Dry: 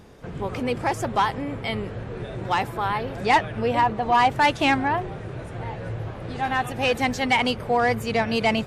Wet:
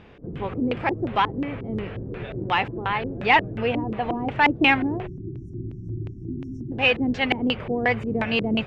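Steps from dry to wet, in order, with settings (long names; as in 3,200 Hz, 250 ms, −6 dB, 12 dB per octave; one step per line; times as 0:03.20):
time-frequency box erased 0:05.07–0:06.72, 400–5,300 Hz
auto-filter low-pass square 2.8 Hz 330–2,700 Hz
level −1 dB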